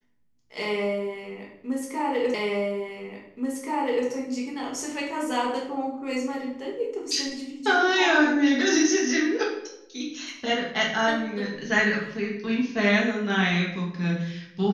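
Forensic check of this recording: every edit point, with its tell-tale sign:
2.34 s: repeat of the last 1.73 s

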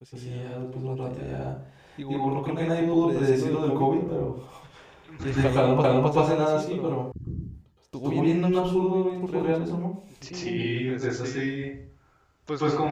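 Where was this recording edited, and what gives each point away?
5.84 s: repeat of the last 0.26 s
7.12 s: sound stops dead

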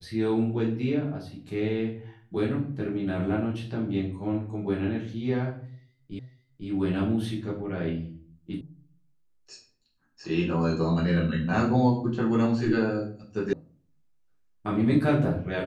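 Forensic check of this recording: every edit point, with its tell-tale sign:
6.19 s: repeat of the last 0.5 s
8.61 s: sound stops dead
13.53 s: sound stops dead

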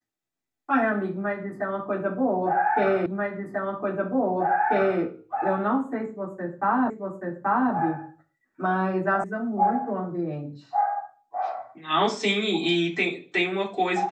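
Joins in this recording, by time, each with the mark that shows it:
3.06 s: repeat of the last 1.94 s
6.90 s: repeat of the last 0.83 s
9.24 s: sound stops dead

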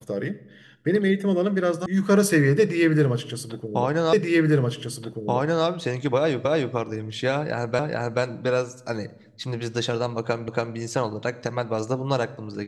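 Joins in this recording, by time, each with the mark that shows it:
1.86 s: sound stops dead
4.13 s: repeat of the last 1.53 s
6.45 s: repeat of the last 0.29 s
7.79 s: repeat of the last 0.43 s
10.48 s: repeat of the last 0.28 s

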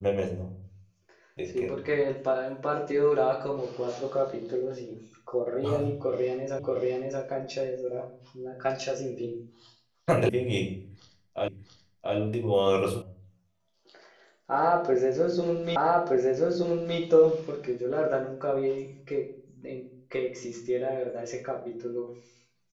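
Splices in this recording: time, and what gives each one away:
6.59 s: repeat of the last 0.63 s
10.29 s: sound stops dead
11.48 s: repeat of the last 0.68 s
13.02 s: sound stops dead
15.76 s: repeat of the last 1.22 s

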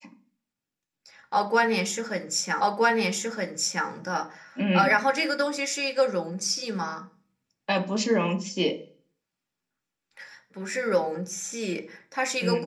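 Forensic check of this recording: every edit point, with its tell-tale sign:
2.61 s: repeat of the last 1.27 s

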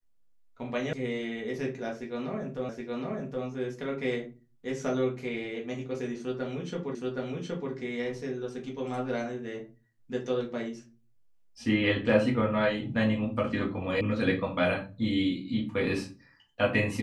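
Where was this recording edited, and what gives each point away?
0.93 s: sound stops dead
2.69 s: repeat of the last 0.77 s
6.95 s: repeat of the last 0.77 s
14.01 s: sound stops dead

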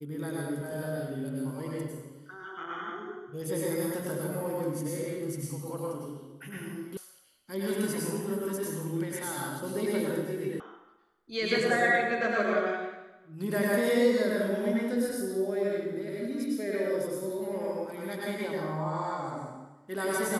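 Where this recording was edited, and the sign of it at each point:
6.97 s: sound stops dead
10.60 s: sound stops dead

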